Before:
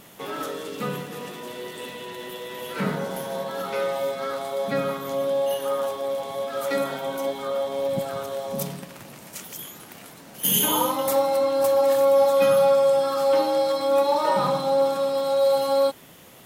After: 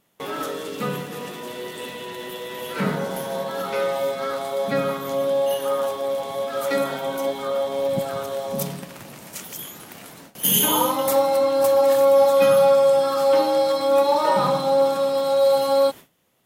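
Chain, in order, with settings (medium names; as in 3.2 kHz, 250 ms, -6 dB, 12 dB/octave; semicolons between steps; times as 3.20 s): gate with hold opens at -33 dBFS; trim +2.5 dB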